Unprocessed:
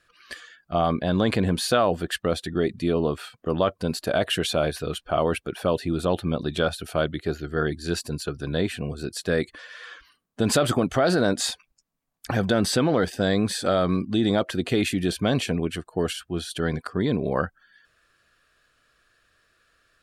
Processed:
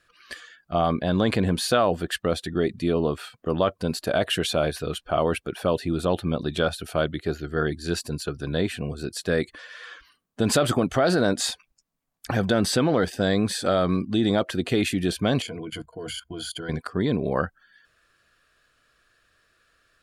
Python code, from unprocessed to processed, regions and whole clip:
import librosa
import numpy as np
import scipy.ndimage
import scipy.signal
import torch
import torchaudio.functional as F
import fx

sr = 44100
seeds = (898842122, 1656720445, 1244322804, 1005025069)

y = fx.chain(x, sr, fx.ripple_eq(per_octave=1.8, db=15),
    fx.level_steps(step_db=17), at=(15.42, 16.69))